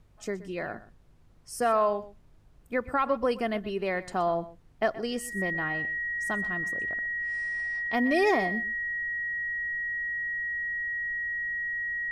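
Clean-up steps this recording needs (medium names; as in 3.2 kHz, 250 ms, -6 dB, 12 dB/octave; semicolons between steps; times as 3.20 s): de-hum 51.1 Hz, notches 3; band-stop 1.9 kHz, Q 30; expander -47 dBFS, range -21 dB; inverse comb 124 ms -17 dB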